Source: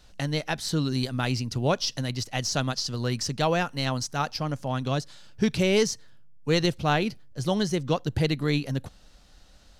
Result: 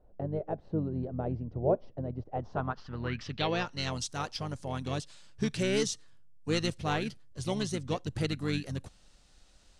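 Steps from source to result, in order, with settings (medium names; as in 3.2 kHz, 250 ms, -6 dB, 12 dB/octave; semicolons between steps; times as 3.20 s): low-pass sweep 620 Hz -> 8.9 kHz, 2.23–4.05 s; harmony voices -7 st -7 dB; trim -8 dB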